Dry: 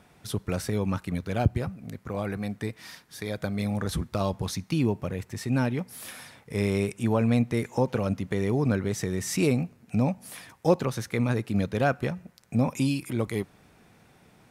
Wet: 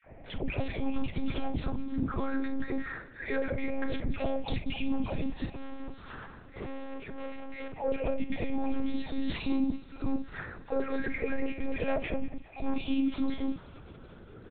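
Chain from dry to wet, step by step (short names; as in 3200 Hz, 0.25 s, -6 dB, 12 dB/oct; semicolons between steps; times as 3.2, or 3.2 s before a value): moving spectral ripple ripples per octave 0.51, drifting +0.26 Hz, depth 14 dB; notch 1100 Hz, Q 6.4; low-pass opened by the level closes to 920 Hz, open at -20 dBFS; compressor 5:1, threshold -31 dBFS, peak gain reduction 16 dB; limiter -26 dBFS, peak gain reduction 8.5 dB; dispersion lows, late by 0.11 s, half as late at 690 Hz; 5.45–7.79 tube stage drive 44 dB, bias 0.7; sine folder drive 4 dB, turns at -22.5 dBFS; doubler 47 ms -10 dB; thinning echo 0.188 s, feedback 81%, high-pass 830 Hz, level -19 dB; monotone LPC vocoder at 8 kHz 270 Hz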